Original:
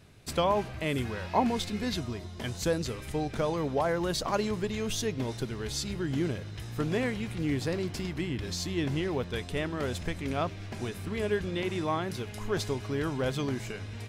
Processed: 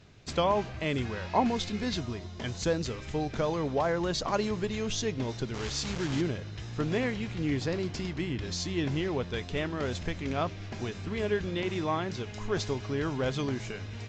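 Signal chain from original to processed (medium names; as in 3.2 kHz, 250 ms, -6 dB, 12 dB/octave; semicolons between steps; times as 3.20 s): 5.54–6.21 s: word length cut 6-bit, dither none; Vorbis 64 kbps 16 kHz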